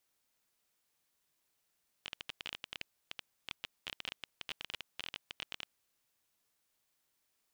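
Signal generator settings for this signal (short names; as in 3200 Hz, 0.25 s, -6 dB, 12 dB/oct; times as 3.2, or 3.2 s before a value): random clicks 17/s -23 dBFS 3.64 s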